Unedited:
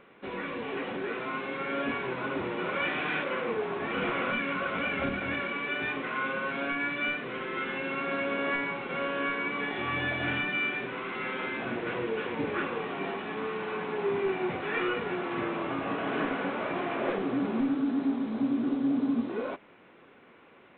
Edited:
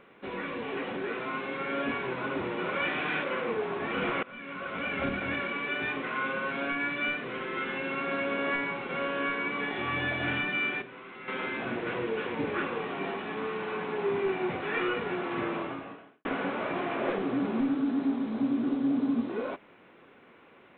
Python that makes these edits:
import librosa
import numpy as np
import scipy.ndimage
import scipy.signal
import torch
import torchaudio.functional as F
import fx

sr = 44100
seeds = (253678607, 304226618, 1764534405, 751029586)

y = fx.edit(x, sr, fx.fade_in_from(start_s=4.23, length_s=0.84, floor_db=-23.0),
    fx.clip_gain(start_s=10.82, length_s=0.46, db=-10.0),
    fx.fade_out_span(start_s=15.57, length_s=0.68, curve='qua'), tone=tone)